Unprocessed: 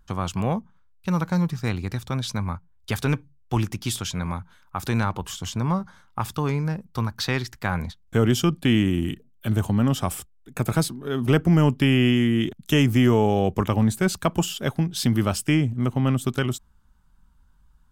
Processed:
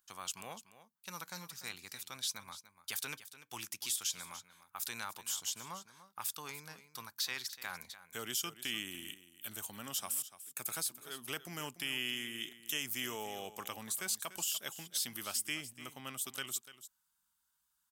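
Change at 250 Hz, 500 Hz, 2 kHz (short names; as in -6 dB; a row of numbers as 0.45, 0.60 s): -29.5, -24.0, -11.5 dB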